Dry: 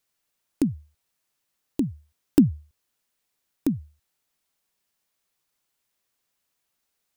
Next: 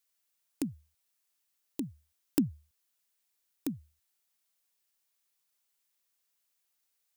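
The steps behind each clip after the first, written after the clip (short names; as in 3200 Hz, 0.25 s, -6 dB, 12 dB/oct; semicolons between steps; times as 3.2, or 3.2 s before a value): tilt +2 dB/oct; gain -7.5 dB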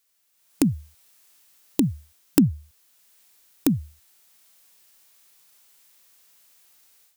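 in parallel at -1.5 dB: compressor, threshold -38 dBFS, peak gain reduction 15 dB; on the sum: harmonic-percussive split harmonic +5 dB; AGC gain up to 12.5 dB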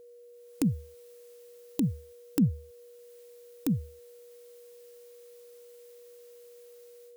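limiter -11 dBFS, peak gain reduction 9 dB; whine 480 Hz -46 dBFS; gain -3.5 dB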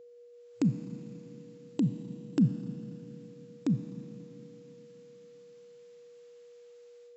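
high shelf 5100 Hz -9 dB; FFT band-pass 110–7700 Hz; Schroeder reverb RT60 3.5 s, combs from 28 ms, DRR 9 dB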